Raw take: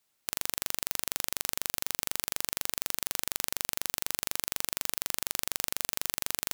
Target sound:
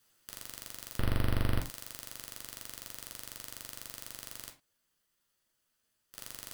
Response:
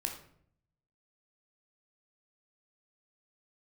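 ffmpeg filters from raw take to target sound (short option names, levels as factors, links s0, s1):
-filter_complex "[0:a]asettb=1/sr,asplit=3[s0][s1][s2];[s0]atrim=end=0.984[s3];[s1]atrim=start=0.98:end=1.59,asetpts=PTS-STARTPTS,afade=t=in:d=0.004:c=qsin,afade=t=out:st=0.606:d=0.004:c=qsin,aemphasis=mode=reproduction:type=riaa[s4];[s2]atrim=start=1.586[s5];[s3][s4]acrossfade=d=0.004:c1=hsin:c2=qsin[s6];[s6][s5]acrossfade=d=0.004:c1=qsin:c2=hsin,asplit=3[s7][s8][s9];[s7]afade=t=out:st=4.49:d=0.02[s10];[s8]acompressor=threshold=0.02:ratio=10,afade=t=in:st=4.49:d=0.02,afade=t=out:st=6.13:d=0.02[s11];[s9]afade=t=in:st=6.13:d=0.02[s12];[s10][s11][s12]amix=inputs=3:normalize=0,aeval=exprs='0.119*(abs(mod(val(0)/0.119+3,4)-2)-1)':c=same[s13];[1:a]atrim=start_sample=2205,afade=t=out:st=0.26:d=0.01,atrim=end_sample=11907,asetrate=79380,aresample=44100[s14];[s13][s14]afir=irnorm=-1:irlink=0,volume=3.16"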